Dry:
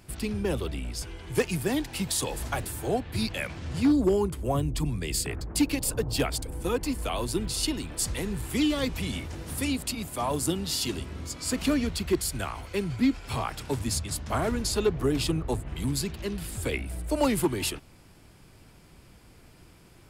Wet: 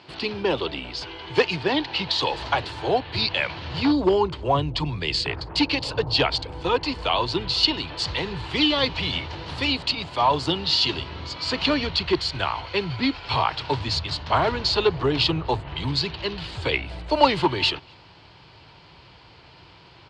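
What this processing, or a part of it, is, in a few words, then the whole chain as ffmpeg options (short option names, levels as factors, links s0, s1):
kitchen radio: -filter_complex "[0:a]asettb=1/sr,asplit=3[s0][s1][s2];[s0]atrim=end=1.564[s3];[s1]atrim=start=1.56:end=2.21,asetpts=PTS-STARTPTS,afade=t=in:d=0.004:c=qsin,afade=t=out:st=0.646:d=0.004:c=qsin,lowpass=5800[s4];[s2]atrim=start=2.206[s5];[s3][s4]acrossfade=d=0.004:c1=hsin:c2=qsin[s6];[s6][s5]acrossfade=d=0.004:c1=qsin:c2=hsin,asubboost=boost=6.5:cutoff=94,highpass=210,equalizer=f=220:t=q:w=4:g=-8,equalizer=f=930:t=q:w=4:g=8,equalizer=f=3000:t=q:w=4:g=6,equalizer=f=4300:t=q:w=4:g=9,lowpass=f=4500:w=0.5412,lowpass=f=4500:w=1.3066,asplit=2[s7][s8];[s8]adelay=244.9,volume=0.0316,highshelf=f=4000:g=-5.51[s9];[s7][s9]amix=inputs=2:normalize=0,volume=2.24"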